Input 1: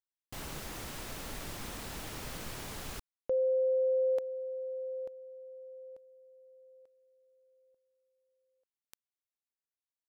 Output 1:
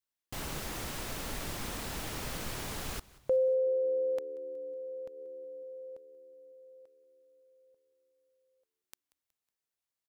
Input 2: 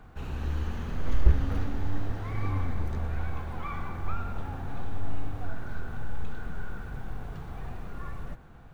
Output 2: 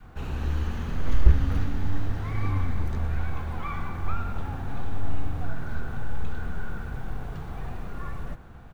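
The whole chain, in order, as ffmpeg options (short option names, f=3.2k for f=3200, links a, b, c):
-filter_complex "[0:a]asplit=4[a][b][c][d];[b]adelay=184,afreqshift=-76,volume=-21.5dB[e];[c]adelay=368,afreqshift=-152,volume=-27.9dB[f];[d]adelay=552,afreqshift=-228,volume=-34.3dB[g];[a][e][f][g]amix=inputs=4:normalize=0,adynamicequalizer=threshold=0.00708:dfrequency=550:dqfactor=0.82:tfrequency=550:tqfactor=0.82:attack=5:release=100:ratio=0.417:range=3.5:mode=cutabove:tftype=bell,volume=3.5dB"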